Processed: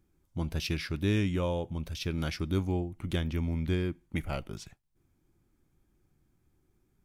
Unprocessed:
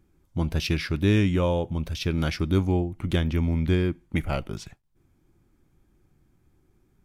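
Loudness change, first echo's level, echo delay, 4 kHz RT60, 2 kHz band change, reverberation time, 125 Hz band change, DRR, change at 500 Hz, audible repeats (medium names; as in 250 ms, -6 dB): -7.0 dB, no echo, no echo, no reverb, -6.0 dB, no reverb, -7.0 dB, no reverb, -7.0 dB, no echo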